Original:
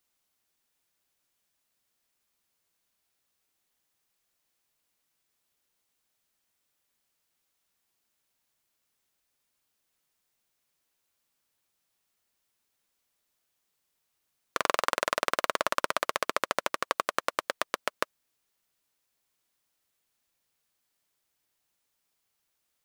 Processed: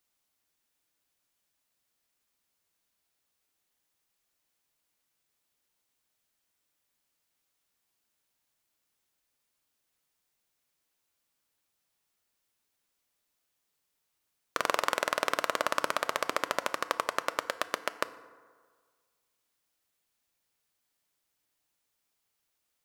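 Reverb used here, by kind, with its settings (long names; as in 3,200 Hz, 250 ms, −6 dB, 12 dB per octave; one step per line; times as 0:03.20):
feedback delay network reverb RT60 1.7 s, low-frequency decay 0.85×, high-frequency decay 0.45×, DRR 12.5 dB
level −1.5 dB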